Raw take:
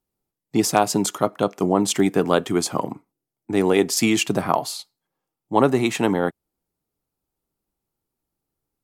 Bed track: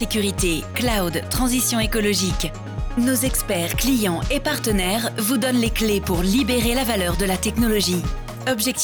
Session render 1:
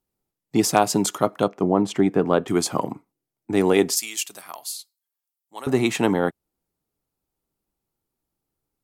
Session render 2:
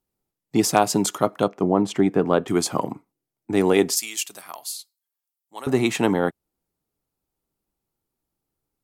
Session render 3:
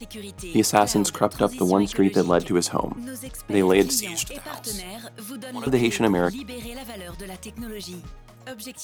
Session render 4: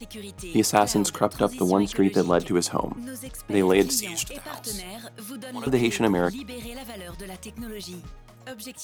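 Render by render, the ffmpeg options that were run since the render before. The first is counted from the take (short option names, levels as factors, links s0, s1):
-filter_complex "[0:a]asettb=1/sr,asplit=3[s0][s1][s2];[s0]atrim=end=1.484[s3];[s1]atrim=start=1.48:end=2.48,asetpts=PTS-STARTPTS,afade=t=in:d=0.004:c=qsin,afade=t=out:st=0.996:d=0.004:c=qsin,lowpass=f=1400:p=1[s4];[s2]atrim=start=2.476[s5];[s3][s4]acrossfade=d=0.004:c1=hsin:c2=qsin[s6];[s6][s5]acrossfade=d=0.004:c1=qsin:c2=hsin,asettb=1/sr,asplit=3[s7][s8][s9];[s7]atrim=end=3.954[s10];[s8]atrim=start=3.95:end=5.67,asetpts=PTS-STARTPTS,afade=t=in:d=0.004:c=qsin,afade=t=out:st=1.716:d=0.004:c=qsin,aderivative[s11];[s9]atrim=start=5.666[s12];[s10][s11]acrossfade=d=0.004:c1=hsin:c2=qsin[s13];[s13][s12]acrossfade=d=0.004:c1=qsin:c2=hsin"
-af anull
-filter_complex "[1:a]volume=0.158[s0];[0:a][s0]amix=inputs=2:normalize=0"
-af "volume=0.841"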